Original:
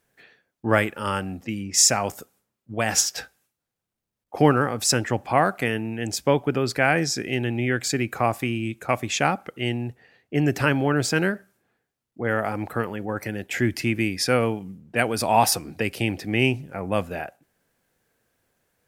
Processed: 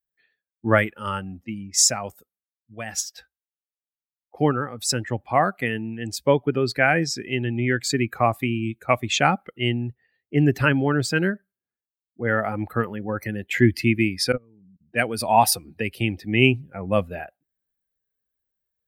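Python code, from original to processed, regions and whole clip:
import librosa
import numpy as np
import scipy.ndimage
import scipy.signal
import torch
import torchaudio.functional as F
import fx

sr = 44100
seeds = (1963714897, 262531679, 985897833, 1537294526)

y = fx.chain(x, sr, fx.lowpass(hz=1200.0, slope=12),
    fx.peak_eq(hz=730.0, db=-11.5, octaves=0.72),
    fx.level_steps(step_db=22), at=(14.32, 14.81))
y = fx.bin_expand(y, sr, power=1.5)
y = fx.rider(y, sr, range_db=10, speed_s=2.0)
y = F.gain(torch.from_numpy(y), 3.0).numpy()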